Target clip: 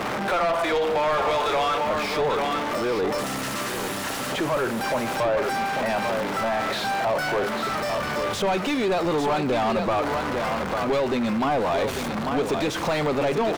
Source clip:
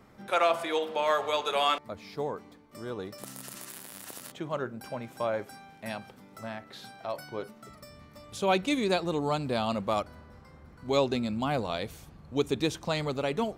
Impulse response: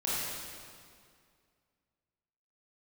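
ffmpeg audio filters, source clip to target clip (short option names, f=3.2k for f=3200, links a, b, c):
-filter_complex "[0:a]aeval=exprs='val(0)+0.5*0.0211*sgn(val(0))':c=same,acompressor=threshold=-27dB:ratio=6,asplit=2[a][b];[b]aecho=0:1:845:0.355[c];[a][c]amix=inputs=2:normalize=0,asplit=2[d][e];[e]highpass=f=720:p=1,volume=33dB,asoftclip=type=tanh:threshold=-6.5dB[f];[d][f]amix=inputs=2:normalize=0,lowpass=f=1.5k:p=1,volume=-6dB,volume=-6.5dB"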